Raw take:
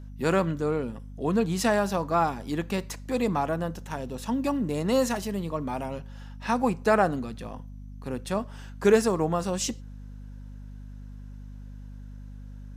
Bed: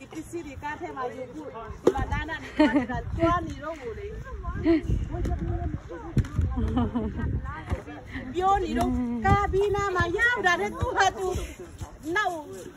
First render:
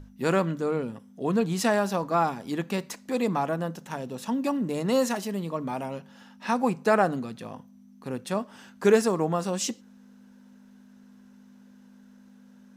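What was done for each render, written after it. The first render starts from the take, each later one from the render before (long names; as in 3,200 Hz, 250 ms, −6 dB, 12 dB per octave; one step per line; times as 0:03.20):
mains-hum notches 50/100/150 Hz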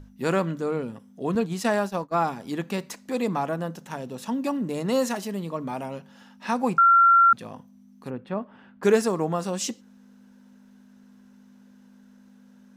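0:01.35–0:02.19: downward expander −26 dBFS
0:06.78–0:07.33: beep over 1,370 Hz −12.5 dBFS
0:08.10–0:08.83: high-frequency loss of the air 480 metres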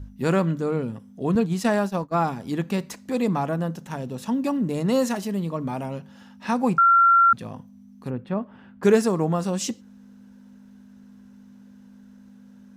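parametric band 67 Hz +11 dB 2.9 octaves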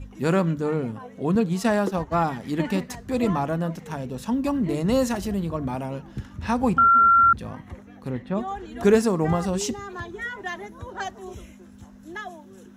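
mix in bed −10 dB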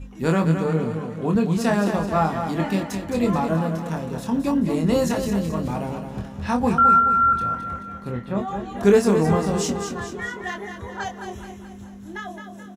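double-tracking delay 25 ms −5 dB
repeating echo 215 ms, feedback 49%, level −7.5 dB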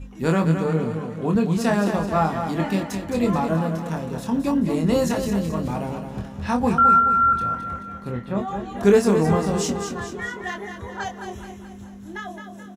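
no processing that can be heard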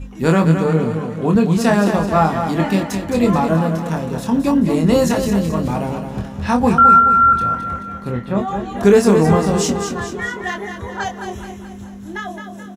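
level +6 dB
brickwall limiter −2 dBFS, peak gain reduction 2.5 dB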